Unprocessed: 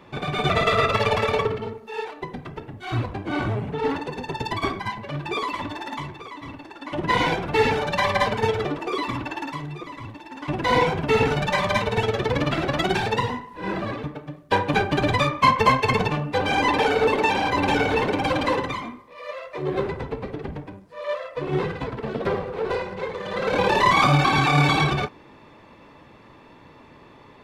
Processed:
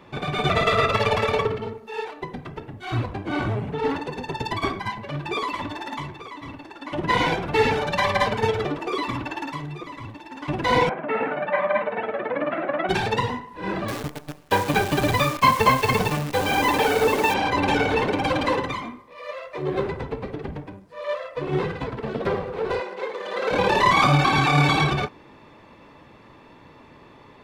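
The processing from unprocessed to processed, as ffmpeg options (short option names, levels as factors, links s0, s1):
-filter_complex "[0:a]asettb=1/sr,asplit=3[s0][s1][s2];[s0]atrim=end=10.894[s3];[s1]atrim=start=10.89:end=12.89,asetpts=PTS-STARTPTS,afade=t=in:d=0.004:c=qsin,afade=t=out:st=1.996:d=0.004:c=qsin,highpass=f=240:w=0.5412,highpass=f=240:w=1.3066,equalizer=f=260:t=q:w=4:g=-3,equalizer=f=410:t=q:w=4:g=-10,equalizer=f=600:t=q:w=4:g=6,equalizer=f=900:t=q:w=4:g=-4,lowpass=f=2100:w=0.5412,lowpass=f=2100:w=1.3066[s4];[s2]atrim=start=12.886[s5];[s3][s4]acrossfade=d=0.004:c1=hsin:c2=qsin[s6];[s6][s5]acrossfade=d=0.004:c1=qsin:c2=hsin,asettb=1/sr,asplit=3[s7][s8][s9];[s7]atrim=end=13.884[s10];[s8]atrim=start=13.88:end=17.34,asetpts=PTS-STARTPTS,afade=t=in:d=0.004:c=qsin,afade=t=out:st=3.456:d=0.004:c=qsin,acrusher=bits=6:dc=4:mix=0:aa=0.000001[s11];[s9]atrim=start=17.336[s12];[s10][s11]acrossfade=d=0.004:c1=hsin:c2=qsin[s13];[s13][s12]acrossfade=d=0.004:c1=qsin:c2=hsin,asettb=1/sr,asplit=3[s14][s15][s16];[s14]atrim=end=22.804[s17];[s15]atrim=start=22.8:end=23.51,asetpts=PTS-STARTPTS,afade=t=in:d=0.004:c=qsin,afade=t=out:st=0.706:d=0.004:c=qsin,highpass=f=280:w=0.5412,highpass=f=280:w=1.3066[s18];[s16]atrim=start=23.506[s19];[s17][s18]acrossfade=d=0.004:c1=hsin:c2=qsin[s20];[s20][s19]acrossfade=d=0.004:c1=qsin:c2=hsin"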